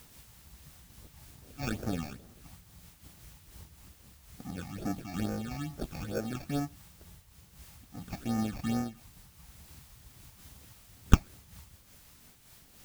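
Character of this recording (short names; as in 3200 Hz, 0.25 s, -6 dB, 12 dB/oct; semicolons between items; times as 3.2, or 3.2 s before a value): aliases and images of a low sample rate 1000 Hz, jitter 0%; phasing stages 8, 2.3 Hz, lowest notch 420–3500 Hz; a quantiser's noise floor 10-bit, dither triangular; noise-modulated level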